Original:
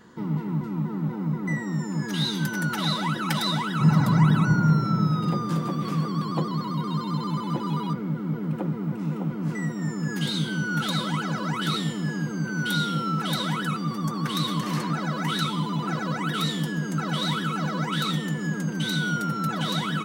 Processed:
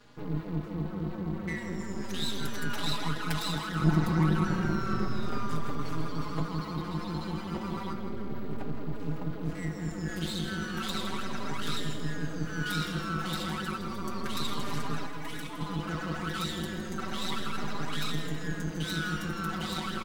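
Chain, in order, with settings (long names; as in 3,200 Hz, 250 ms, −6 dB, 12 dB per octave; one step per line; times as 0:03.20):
hum with harmonics 120 Hz, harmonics 39, −58 dBFS −1 dB per octave
0:15.06–0:15.61: phaser with its sweep stopped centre 880 Hz, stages 8
half-wave rectification
echo with a time of its own for lows and highs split 510 Hz, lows 429 ms, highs 162 ms, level −11 dB
barber-pole flanger 4.4 ms +0.33 Hz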